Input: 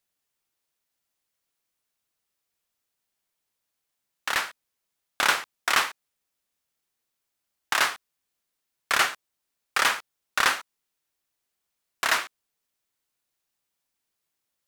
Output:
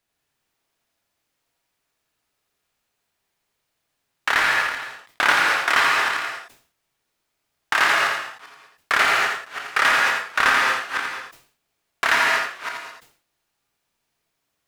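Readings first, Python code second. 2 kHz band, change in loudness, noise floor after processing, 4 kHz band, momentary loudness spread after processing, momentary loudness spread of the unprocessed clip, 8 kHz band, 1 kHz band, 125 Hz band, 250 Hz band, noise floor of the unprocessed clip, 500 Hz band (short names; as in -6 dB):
+9.0 dB, +5.5 dB, -77 dBFS, +4.0 dB, 14 LU, 11 LU, 0.0 dB, +8.0 dB, n/a, +7.0 dB, -82 dBFS, +8.0 dB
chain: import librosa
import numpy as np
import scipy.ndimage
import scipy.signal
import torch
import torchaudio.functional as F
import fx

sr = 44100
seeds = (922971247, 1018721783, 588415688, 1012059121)

p1 = fx.reverse_delay(x, sr, ms=282, wet_db=-13)
p2 = fx.high_shelf(p1, sr, hz=4500.0, db=-10.0)
p3 = fx.rev_gated(p2, sr, seeds[0], gate_ms=240, shape='flat', drr_db=1.0)
p4 = fx.over_compress(p3, sr, threshold_db=-30.0, ratio=-1.0)
p5 = p3 + (p4 * 10.0 ** (-2.0 / 20.0))
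p6 = fx.dynamic_eq(p5, sr, hz=1800.0, q=1.4, threshold_db=-35.0, ratio=4.0, max_db=4)
p7 = p6 + 10.0 ** (-5.0 / 20.0) * np.pad(p6, (int(84 * sr / 1000.0), 0))[:len(p6)]
y = fx.sustainer(p7, sr, db_per_s=120.0)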